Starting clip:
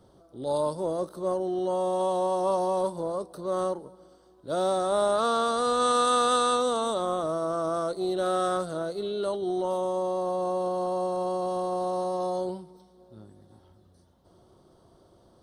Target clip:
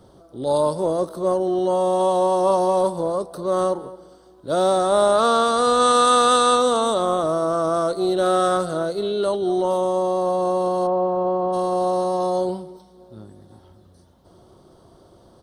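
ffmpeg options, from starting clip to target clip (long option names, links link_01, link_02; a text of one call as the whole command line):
ffmpeg -i in.wav -filter_complex "[0:a]asplit=3[link_01][link_02][link_03];[link_01]afade=type=out:start_time=10.86:duration=0.02[link_04];[link_02]lowpass=1600,afade=type=in:start_time=10.86:duration=0.02,afade=type=out:start_time=11.52:duration=0.02[link_05];[link_03]afade=type=in:start_time=11.52:duration=0.02[link_06];[link_04][link_05][link_06]amix=inputs=3:normalize=0,asplit=2[link_07][link_08];[link_08]adelay=220,highpass=300,lowpass=3400,asoftclip=type=hard:threshold=-19.5dB,volume=-18dB[link_09];[link_07][link_09]amix=inputs=2:normalize=0,volume=7.5dB" out.wav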